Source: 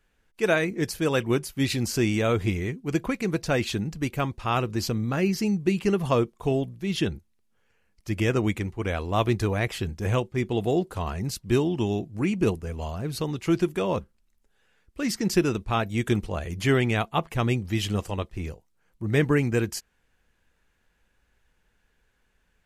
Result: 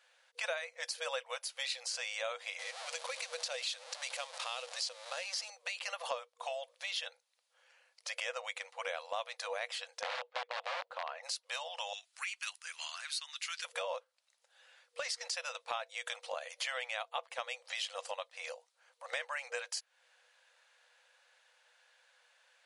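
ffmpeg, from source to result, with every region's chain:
ffmpeg -i in.wav -filter_complex "[0:a]asettb=1/sr,asplit=3[link_01][link_02][link_03];[link_01]atrim=end=2.594[link_04];[link_02]atrim=start=2.59:end=5.5,asetpts=PTS-STARTPTS,afade=type=in:duration=0.004:curve=qsin,afade=type=out:start_time=2.906:duration=0.004:curve=qsin,aeval=exprs='val(0)+0.5*0.0237*sgn(val(0))':channel_layout=same,acrossover=split=350|3000[link_05][link_06][link_07];[link_06]acompressor=threshold=-44dB:ratio=2:attack=3.2:release=140:knee=2.83:detection=peak[link_08];[link_05][link_08][link_07]amix=inputs=3:normalize=0[link_09];[link_03]atrim=start=5.496[link_10];[link_04][link_09]acrossfade=duration=0.004:curve1=hsin:curve2=qsin[link_11];[link_11][link_10]acrossfade=duration=0.004:curve1=qsin:curve2=hsin,asettb=1/sr,asplit=3[link_12][link_13][link_14];[link_12]atrim=end=10.014[link_15];[link_13]atrim=start=10.01:end=11.23,asetpts=PTS-STARTPTS,afade=type=in:duration=0.004:curve=qsin,afade=type=out:start_time=1.216:duration=0.004:curve=qsin,aeval=exprs='(mod(11.2*val(0)+1,2)-1)/11.2':channel_layout=same,highpass=320,lowpass=2600[link_16];[link_14]atrim=start=11.226[link_17];[link_15][link_16]acrossfade=duration=0.004:curve1=hsin:curve2=qsin[link_18];[link_18][link_17]acrossfade=duration=0.004:curve1=qsin:curve2=hsin,asettb=1/sr,asplit=3[link_19][link_20][link_21];[link_19]atrim=end=11.934[link_22];[link_20]atrim=start=11.93:end=13.65,asetpts=PTS-STARTPTS,afade=type=in:duration=0.004:curve=qsin,afade=type=out:start_time=1.716:duration=0.004:curve=qsin,highpass=frequency=1400:width=0.5412,highpass=frequency=1400:width=1.3066,highshelf=frequency=6100:gain=5[link_23];[link_21]atrim=start=13.646[link_24];[link_22][link_23]acrossfade=duration=0.004:curve1=hsin:curve2=qsin[link_25];[link_25][link_24]acrossfade=duration=0.004:curve1=qsin:curve2=hsin,afftfilt=real='re*between(b*sr/4096,480,11000)':imag='im*between(b*sr/4096,480,11000)':win_size=4096:overlap=0.75,equalizer=frequency=4100:width=1.6:gain=6.5,acompressor=threshold=-43dB:ratio=4,volume=4.5dB" out.wav

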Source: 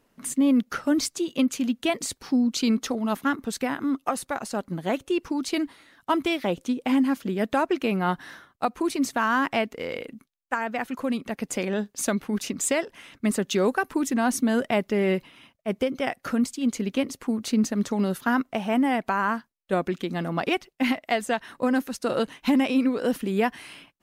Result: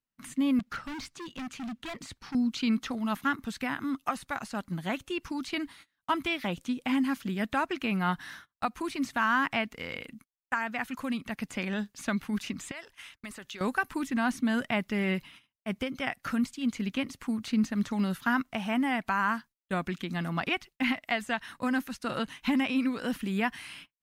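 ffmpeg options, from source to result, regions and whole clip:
ffmpeg -i in.wav -filter_complex "[0:a]asettb=1/sr,asplit=3[link_01][link_02][link_03];[link_01]atrim=end=0.594[link_04];[link_02]atrim=start=0.59:end=2.35,asetpts=PTS-STARTPTS,afade=type=in:duration=0.004:curve=qsin,afade=type=out:start_time=1.756:duration=0.004:curve=qsin,lowpass=frequency=2700:poles=1,asoftclip=type=hard:threshold=-30dB[link_05];[link_03]atrim=start=2.346[link_06];[link_04][link_05]acrossfade=duration=0.004:curve1=hsin:curve2=qsin[link_07];[link_07][link_06]acrossfade=duration=0.004:curve1=qsin:curve2=hsin,asettb=1/sr,asplit=3[link_08][link_09][link_10];[link_08]atrim=end=12.714[link_11];[link_09]atrim=start=12.71:end=13.61,asetpts=PTS-STARTPTS,afade=type=in:duration=0.004:curve=qsin,afade=type=out:start_time=0.896:duration=0.004:curve=qsin,equalizer=frequency=190:width_type=o:width=1.5:gain=-12.5,acompressor=threshold=-33dB:ratio=8:attack=3.2:release=140:knee=1:detection=peak[link_12];[link_10]atrim=start=13.606[link_13];[link_11][link_12]acrossfade=duration=0.004:curve1=hsin:curve2=qsin[link_14];[link_14][link_13]acrossfade=duration=0.004:curve1=qsin:curve2=hsin,agate=range=-25dB:threshold=-47dB:ratio=16:detection=peak,acrossover=split=3300[link_15][link_16];[link_16]acompressor=threshold=-48dB:ratio=4:attack=1:release=60[link_17];[link_15][link_17]amix=inputs=2:normalize=0,equalizer=frequency=460:width=0.81:gain=-14,volume=1.5dB" out.wav

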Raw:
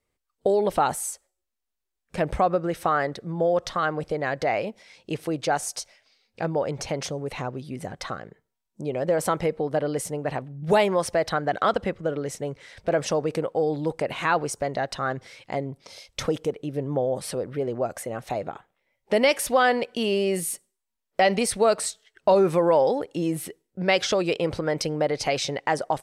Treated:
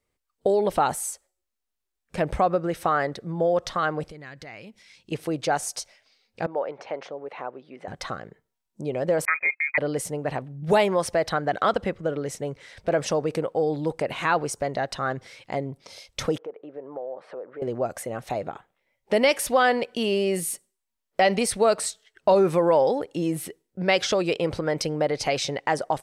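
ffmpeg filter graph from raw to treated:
ffmpeg -i in.wav -filter_complex "[0:a]asettb=1/sr,asplit=3[link_01][link_02][link_03];[link_01]atrim=end=4.104[link_04];[link_02]atrim=start=4.1:end=5.12,asetpts=PTS-STARTPTS,afade=type=in:duration=0.004:curve=qsin,afade=type=out:start_time=1.016:duration=0.004:curve=qsin,equalizer=frequency=630:width=0.8:gain=-13.5,acompressor=threshold=-44dB:ratio=2:attack=3.2:release=140:knee=1:detection=peak[link_05];[link_03]atrim=start=5.116[link_06];[link_04][link_05]acrossfade=duration=0.004:curve1=hsin:curve2=qsin[link_07];[link_07][link_06]acrossfade=duration=0.004:curve1=qsin:curve2=hsin,asettb=1/sr,asplit=3[link_08][link_09][link_10];[link_08]atrim=end=6.464[link_11];[link_09]atrim=start=6.46:end=7.88,asetpts=PTS-STARTPTS,afade=type=in:duration=0.004:curve=qsin,afade=type=out:start_time=1.416:duration=0.004:curve=qsin,highpass=470,lowpass=2500,adynamicequalizer=threshold=0.00501:dfrequency=1600:dqfactor=0.7:tfrequency=1600:tqfactor=0.7:attack=5:release=100:ratio=0.375:range=2.5:mode=cutabove:tftype=highshelf[link_12];[link_10]atrim=start=7.876[link_13];[link_11][link_12]acrossfade=duration=0.004:curve1=hsin:curve2=qsin[link_14];[link_14][link_13]acrossfade=duration=0.004:curve1=qsin:curve2=hsin,asettb=1/sr,asplit=3[link_15][link_16][link_17];[link_15]atrim=end=9.254[link_18];[link_16]atrim=start=9.25:end=9.78,asetpts=PTS-STARTPTS,afade=type=in:duration=0.004:curve=qsin,afade=type=out:start_time=0.526:duration=0.004:curve=qsin,agate=range=-33dB:threshold=-33dB:ratio=16:release=100:detection=peak,lowpass=frequency=2200:width_type=q:width=0.5098,lowpass=frequency=2200:width_type=q:width=0.6013,lowpass=frequency=2200:width_type=q:width=0.9,lowpass=frequency=2200:width_type=q:width=2.563,afreqshift=-2600[link_19];[link_17]atrim=start=9.776[link_20];[link_18][link_19]acrossfade=duration=0.004:curve1=hsin:curve2=qsin[link_21];[link_21][link_20]acrossfade=duration=0.004:curve1=qsin:curve2=hsin,asettb=1/sr,asplit=3[link_22][link_23][link_24];[link_22]atrim=end=16.384[link_25];[link_23]atrim=start=16.38:end=17.62,asetpts=PTS-STARTPTS,afade=type=in:duration=0.004:curve=qsin,afade=type=out:start_time=1.236:duration=0.004:curve=qsin,asuperpass=centerf=830:order=4:qfactor=0.69,acompressor=threshold=-36dB:ratio=2:attack=3.2:release=140:knee=1:detection=peak[link_26];[link_24]atrim=start=17.616[link_27];[link_25][link_26]acrossfade=duration=0.004:curve1=hsin:curve2=qsin[link_28];[link_28][link_27]acrossfade=duration=0.004:curve1=qsin:curve2=hsin" out.wav

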